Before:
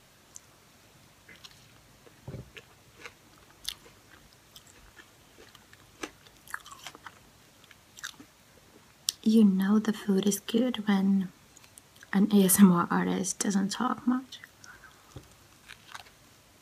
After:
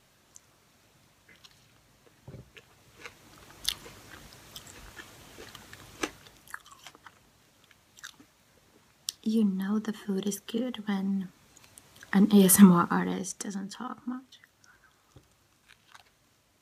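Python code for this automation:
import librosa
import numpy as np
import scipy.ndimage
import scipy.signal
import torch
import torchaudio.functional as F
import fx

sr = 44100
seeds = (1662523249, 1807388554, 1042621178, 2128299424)

y = fx.gain(x, sr, db=fx.line((2.49, -5.0), (3.7, 6.0), (6.04, 6.0), (6.62, -5.0), (11.12, -5.0), (12.19, 2.5), (12.78, 2.5), (13.55, -9.0)))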